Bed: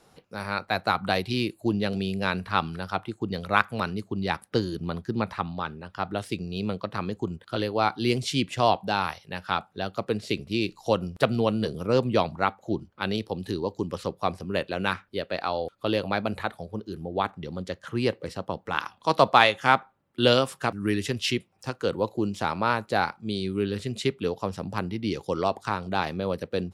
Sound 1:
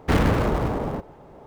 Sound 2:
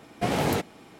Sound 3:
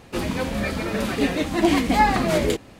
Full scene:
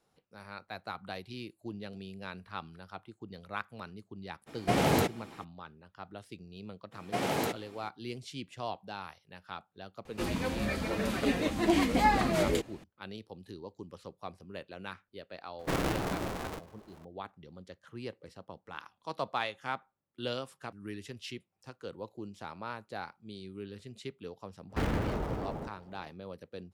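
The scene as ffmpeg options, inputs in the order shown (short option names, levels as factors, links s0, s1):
-filter_complex "[2:a]asplit=2[s0][s1];[1:a]asplit=2[s2][s3];[0:a]volume=0.158[s4];[s1]highpass=f=230:p=1[s5];[s2]aeval=exprs='val(0)*sgn(sin(2*PI*230*n/s))':c=same[s6];[s3]bandreject=f=1100:w=18[s7];[s0]atrim=end=0.99,asetpts=PTS-STARTPTS,volume=0.891,afade=t=in:d=0.02,afade=t=out:st=0.97:d=0.02,adelay=4460[s8];[s5]atrim=end=0.99,asetpts=PTS-STARTPTS,volume=0.596,afade=t=in:d=0.02,afade=t=out:st=0.97:d=0.02,adelay=6910[s9];[3:a]atrim=end=2.79,asetpts=PTS-STARTPTS,volume=0.422,afade=t=in:d=0.004:c=hsin,afade=t=out:st=2.786:d=0.004:c=hsin,adelay=10050[s10];[s6]atrim=end=1.46,asetpts=PTS-STARTPTS,volume=0.251,afade=t=in:d=0.004:c=hsin,afade=t=out:st=1.456:d=0.004:c=hsin,adelay=15590[s11];[s7]atrim=end=1.46,asetpts=PTS-STARTPTS,volume=0.266,afade=t=in:d=0.05,afade=t=out:st=1.41:d=0.05,adelay=24680[s12];[s4][s8][s9][s10][s11][s12]amix=inputs=6:normalize=0"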